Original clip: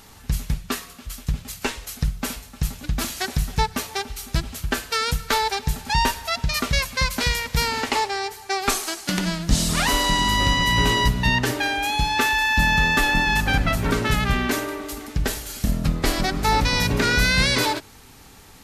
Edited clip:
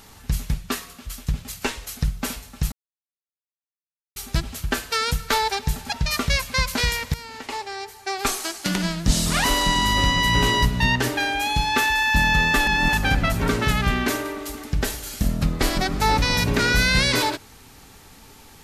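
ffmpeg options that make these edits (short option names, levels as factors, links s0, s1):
-filter_complex "[0:a]asplit=7[s0][s1][s2][s3][s4][s5][s6];[s0]atrim=end=2.72,asetpts=PTS-STARTPTS,afade=t=out:st=2.716:d=0.004:c=hsin[s7];[s1]atrim=start=2.72:end=4.16,asetpts=PTS-STARTPTS,volume=0[s8];[s2]atrim=start=4.16:end=5.922,asetpts=PTS-STARTPTS,afade=t=in:d=0.004:c=hsin[s9];[s3]atrim=start=6.348:end=7.57,asetpts=PTS-STARTPTS,afade=t=out:st=1.218:d=0.004:c=hsin:silence=0.125893[s10];[s4]atrim=start=7.57:end=13.102,asetpts=PTS-STARTPTS,afade=t=in:d=1.43:silence=0.125893[s11];[s5]atrim=start=13.098:end=13.362,asetpts=PTS-STARTPTS,areverse[s12];[s6]atrim=start=13.358[s13];[s7][s8][s9]concat=n=3:v=0:a=1[s14];[s10][s11]concat=n=2:v=0:a=1[s15];[s14][s15]acrossfade=d=0.004:c1=hsin:c2=hsin[s16];[s16][s12]acrossfade=d=0.004:c1=hsin:c2=hsin[s17];[s17][s13]acrossfade=d=0.004:c1=hsin:c2=hsin"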